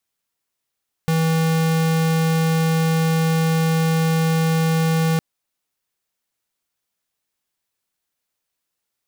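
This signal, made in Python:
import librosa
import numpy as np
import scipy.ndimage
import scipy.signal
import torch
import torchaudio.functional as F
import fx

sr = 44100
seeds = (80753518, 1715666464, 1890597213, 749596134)

y = fx.tone(sr, length_s=4.11, wave='square', hz=162.0, level_db=-18.0)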